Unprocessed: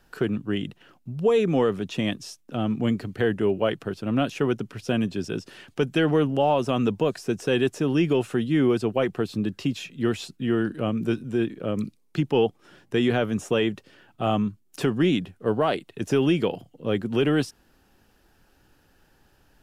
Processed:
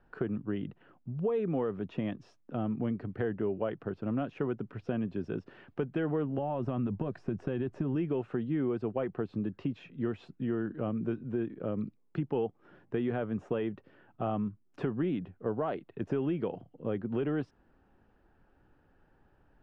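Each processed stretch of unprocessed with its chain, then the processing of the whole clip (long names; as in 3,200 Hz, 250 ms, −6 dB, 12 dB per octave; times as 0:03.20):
0:06.38–0:07.96: downward compressor, threshold −22 dBFS + low-shelf EQ 200 Hz +9.5 dB + notch filter 460 Hz, Q 8
whole clip: downward compressor 2.5 to 1, threshold −26 dBFS; low-pass filter 1,500 Hz 12 dB per octave; level −4 dB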